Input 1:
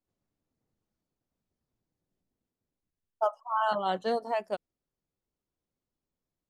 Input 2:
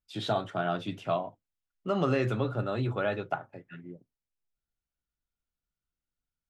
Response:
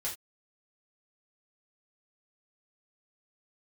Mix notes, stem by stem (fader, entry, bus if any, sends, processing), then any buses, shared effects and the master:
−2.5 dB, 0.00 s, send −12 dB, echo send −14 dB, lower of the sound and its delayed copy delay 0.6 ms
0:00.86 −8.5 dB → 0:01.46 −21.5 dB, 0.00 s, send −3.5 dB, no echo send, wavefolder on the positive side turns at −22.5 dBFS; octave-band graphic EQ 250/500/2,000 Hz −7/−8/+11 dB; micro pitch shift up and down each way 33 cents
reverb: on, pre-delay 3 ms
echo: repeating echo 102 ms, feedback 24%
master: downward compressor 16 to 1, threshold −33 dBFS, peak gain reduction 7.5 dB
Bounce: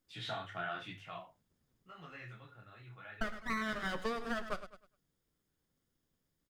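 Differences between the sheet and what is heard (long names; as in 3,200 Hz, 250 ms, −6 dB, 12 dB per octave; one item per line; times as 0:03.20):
stem 1 −2.5 dB → +6.5 dB
stem 2: missing wavefolder on the positive side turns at −22.5 dBFS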